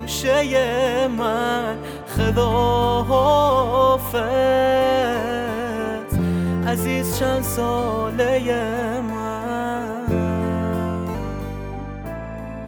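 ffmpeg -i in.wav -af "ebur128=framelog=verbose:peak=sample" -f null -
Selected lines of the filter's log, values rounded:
Integrated loudness:
  I:         -20.6 LUFS
  Threshold: -30.9 LUFS
Loudness range:
  LRA:         6.5 LU
  Threshold: -40.6 LUFS
  LRA low:   -24.5 LUFS
  LRA high:  -18.1 LUFS
Sample peak:
  Peak:       -6.9 dBFS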